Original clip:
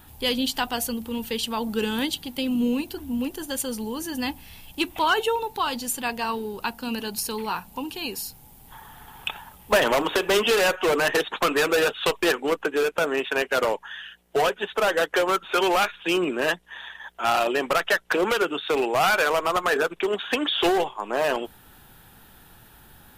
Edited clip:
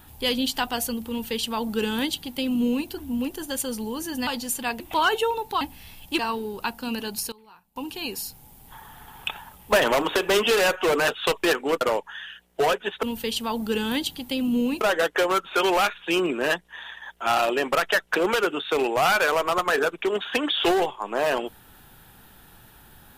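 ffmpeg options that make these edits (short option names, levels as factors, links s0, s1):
-filter_complex "[0:a]asplit=11[s0][s1][s2][s3][s4][s5][s6][s7][s8][s9][s10];[s0]atrim=end=4.272[s11];[s1]atrim=start=5.658:end=6.192[s12];[s2]atrim=start=4.848:end=5.662[s13];[s3]atrim=start=4.268:end=4.852[s14];[s4]atrim=start=6.188:end=7.32,asetpts=PTS-STARTPTS,afade=t=out:st=0.642:d=0.49:c=log:silence=0.0707946[s15];[s5]atrim=start=7.32:end=7.76,asetpts=PTS-STARTPTS,volume=0.0708[s16];[s6]atrim=start=7.76:end=11.082,asetpts=PTS-STARTPTS,afade=t=in:d=0.49:c=log:silence=0.0707946[s17];[s7]atrim=start=11.868:end=12.602[s18];[s8]atrim=start=13.568:end=14.792[s19];[s9]atrim=start=1.098:end=2.882[s20];[s10]atrim=start=14.788[s21];[s11][s12]acrossfade=d=0.004:c1=hsin:c2=hsin[s22];[s22][s13]acrossfade=d=0.004:c1=hsin:c2=hsin[s23];[s23][s14]acrossfade=d=0.004:c1=hsin:c2=hsin[s24];[s15][s16][s17]concat=n=3:v=0:a=1[s25];[s24][s25]acrossfade=d=0.004:c1=hsin:c2=hsin[s26];[s26][s18]acrossfade=d=0.004:c1=hsin:c2=hsin[s27];[s27][s19]acrossfade=d=0.004:c1=hsin:c2=hsin[s28];[s28][s20]acrossfade=d=0.004:c1=hsin:c2=hsin[s29];[s29][s21]acrossfade=d=0.004:c1=hsin:c2=hsin"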